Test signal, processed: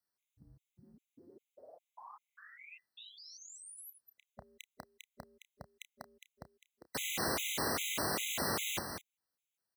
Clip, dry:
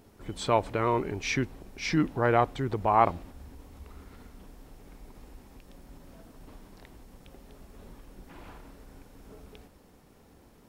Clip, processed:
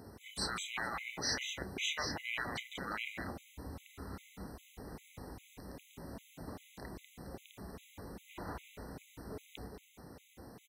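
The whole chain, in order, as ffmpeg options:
-filter_complex "[0:a]afftfilt=real='re*lt(hypot(re,im),0.0562)':imag='im*lt(hypot(re,im),0.0562)':win_size=1024:overlap=0.75,highpass=f=53:w=0.5412,highpass=f=53:w=1.3066,asplit=2[a][b];[b]adelay=31,volume=-12.5dB[c];[a][c]amix=inputs=2:normalize=0,aecho=1:1:194:0.447,afftfilt=real='re*gt(sin(2*PI*2.5*pts/sr)*(1-2*mod(floor(b*sr/1024/2000),2)),0)':imag='im*gt(sin(2*PI*2.5*pts/sr)*(1-2*mod(floor(b*sr/1024/2000),2)),0)':win_size=1024:overlap=0.75,volume=5dB"

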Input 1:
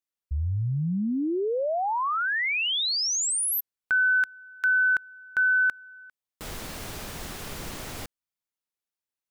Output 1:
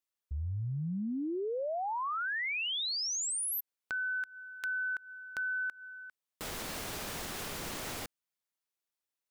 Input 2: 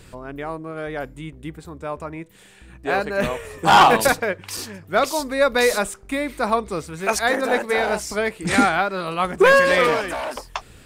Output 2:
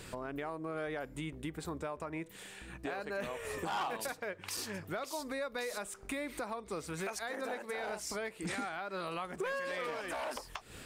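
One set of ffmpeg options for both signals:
-af "lowshelf=f=150:g=-8.5,acompressor=threshold=-32dB:ratio=16:attack=0.77:release=329:knee=1:detection=peak"

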